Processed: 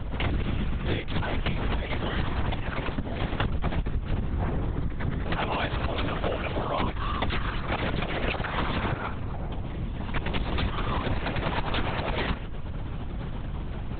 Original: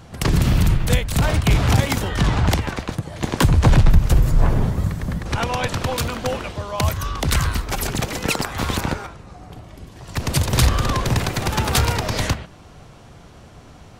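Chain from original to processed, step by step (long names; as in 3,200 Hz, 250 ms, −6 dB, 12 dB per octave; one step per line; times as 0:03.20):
high-pass filter 54 Hz 24 dB per octave
mains hum 50 Hz, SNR 13 dB
linear-prediction vocoder at 8 kHz whisper
downward compressor 10 to 1, threshold −25 dBFS, peak gain reduction 16.5 dB
level +1.5 dB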